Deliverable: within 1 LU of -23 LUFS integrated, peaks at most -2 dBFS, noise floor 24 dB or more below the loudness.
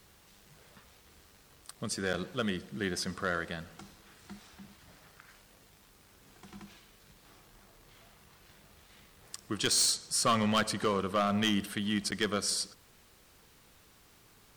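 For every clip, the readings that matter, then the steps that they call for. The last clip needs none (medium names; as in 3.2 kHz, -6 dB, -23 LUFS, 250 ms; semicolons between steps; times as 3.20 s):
clipped samples 0.4%; clipping level -21.5 dBFS; dropouts 2; longest dropout 8.9 ms; loudness -31.0 LUFS; peak level -21.5 dBFS; loudness target -23.0 LUFS
-> clip repair -21.5 dBFS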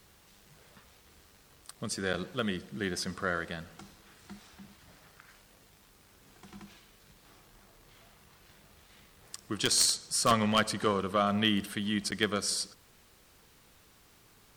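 clipped samples 0.0%; dropouts 2; longest dropout 8.9 ms
-> interpolate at 2.13/12.11 s, 8.9 ms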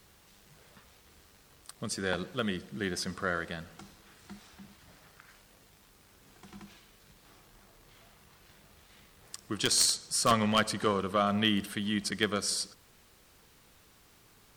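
dropouts 0; loudness -30.0 LUFS; peak level -12.5 dBFS; loudness target -23.0 LUFS
-> trim +7 dB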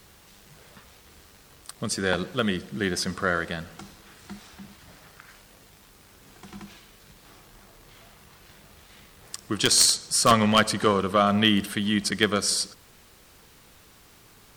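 loudness -23.0 LUFS; peak level -5.5 dBFS; noise floor -54 dBFS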